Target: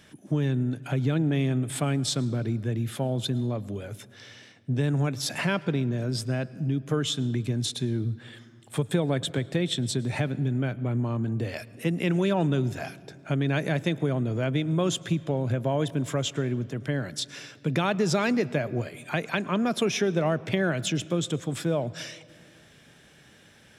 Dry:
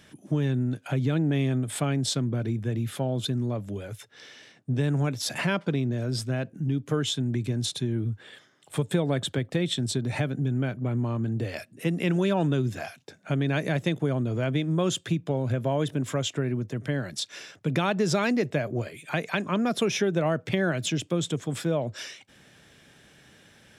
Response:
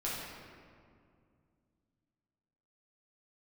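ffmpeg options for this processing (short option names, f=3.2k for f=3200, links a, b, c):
-filter_complex "[0:a]asplit=2[a][b];[1:a]atrim=start_sample=2205,adelay=108[c];[b][c]afir=irnorm=-1:irlink=0,volume=-24dB[d];[a][d]amix=inputs=2:normalize=0"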